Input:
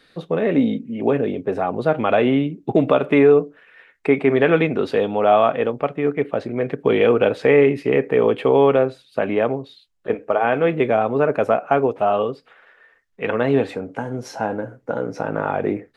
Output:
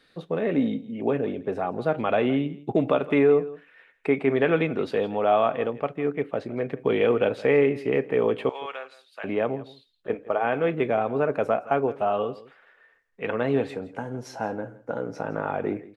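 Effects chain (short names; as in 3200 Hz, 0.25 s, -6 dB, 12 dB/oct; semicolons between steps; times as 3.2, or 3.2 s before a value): 8.49–9.24 HPF 1400 Hz 12 dB/oct; echo 0.166 s -18.5 dB; gain -6 dB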